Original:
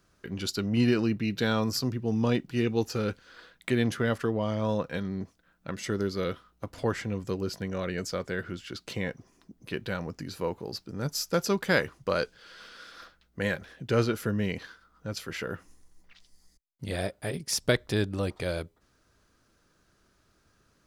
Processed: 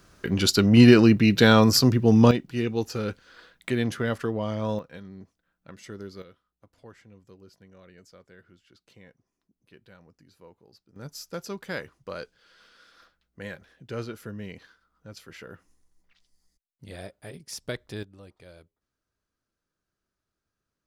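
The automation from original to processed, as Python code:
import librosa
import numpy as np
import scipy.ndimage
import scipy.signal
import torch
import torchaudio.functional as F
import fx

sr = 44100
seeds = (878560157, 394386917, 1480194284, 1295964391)

y = fx.gain(x, sr, db=fx.steps((0.0, 10.5), (2.31, 0.0), (4.79, -10.0), (6.22, -20.0), (10.96, -9.0), (18.03, -18.5)))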